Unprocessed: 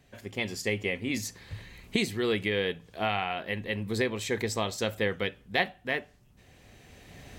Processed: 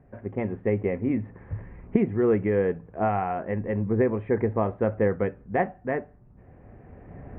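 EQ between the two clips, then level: Gaussian blur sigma 6.4 samples; +7.5 dB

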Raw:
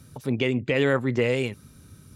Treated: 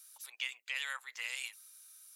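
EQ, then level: HPF 880 Hz 24 dB/oct; differentiator; +1.5 dB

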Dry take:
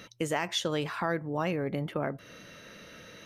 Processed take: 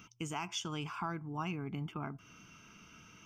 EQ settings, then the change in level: fixed phaser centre 2700 Hz, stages 8; -4.0 dB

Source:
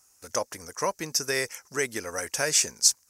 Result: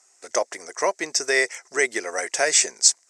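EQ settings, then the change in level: speaker cabinet 350–8400 Hz, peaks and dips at 370 Hz +9 dB, 680 Hz +10 dB, 2000 Hz +9 dB, 3600 Hz +3 dB, 7900 Hz +7 dB; +2.0 dB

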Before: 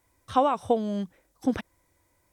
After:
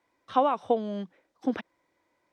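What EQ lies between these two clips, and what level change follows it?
three-band isolator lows -22 dB, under 180 Hz, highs -21 dB, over 5000 Hz; -1.0 dB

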